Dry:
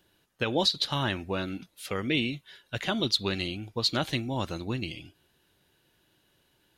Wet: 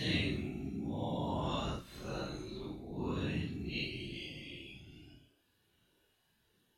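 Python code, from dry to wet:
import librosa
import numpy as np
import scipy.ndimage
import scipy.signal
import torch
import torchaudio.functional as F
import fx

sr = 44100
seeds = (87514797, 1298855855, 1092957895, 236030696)

y = x * np.sin(2.0 * np.pi * 32.0 * np.arange(len(x)) / sr)
y = fx.paulstretch(y, sr, seeds[0], factor=5.3, window_s=0.05, from_s=4.12)
y = F.gain(torch.from_numpy(y), -3.5).numpy()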